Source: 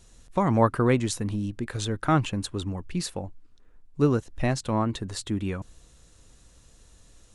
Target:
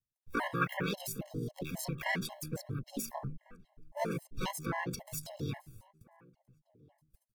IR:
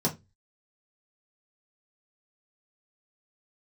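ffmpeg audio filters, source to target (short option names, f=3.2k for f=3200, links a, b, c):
-filter_complex "[0:a]asplit=4[a][b][c][d];[b]asetrate=35002,aresample=44100,atempo=1.25992,volume=-2dB[e];[c]asetrate=58866,aresample=44100,atempo=0.749154,volume=-7dB[f];[d]asetrate=66075,aresample=44100,atempo=0.66742,volume=-18dB[g];[a][e][f][g]amix=inputs=4:normalize=0,bandreject=f=50:t=h:w=6,bandreject=f=100:t=h:w=6,bandreject=f=150:t=h:w=6,bandreject=f=200:t=h:w=6,bandreject=f=250:t=h:w=6,agate=range=-39dB:threshold=-45dB:ratio=16:detection=peak,equalizer=f=85:t=o:w=1.5:g=10,acrossover=split=450|3000[h][i][j];[h]acompressor=threshold=-24dB:ratio=10[k];[k][i][j]amix=inputs=3:normalize=0,aemphasis=mode=production:type=cd,asetrate=68011,aresample=44100,atempo=0.64842,acrossover=split=220|2500[l][m][n];[n]alimiter=limit=-18dB:level=0:latency=1:release=377[o];[l][m][o]amix=inputs=3:normalize=0,asplit=2[p][q];[q]adelay=1399,volume=-24dB,highshelf=f=4k:g=-31.5[r];[p][r]amix=inputs=2:normalize=0,afftfilt=real='re*gt(sin(2*PI*3.7*pts/sr)*(1-2*mod(floor(b*sr/1024/550),2)),0)':imag='im*gt(sin(2*PI*3.7*pts/sr)*(1-2*mod(floor(b*sr/1024/550),2)),0)':win_size=1024:overlap=0.75,volume=-7.5dB"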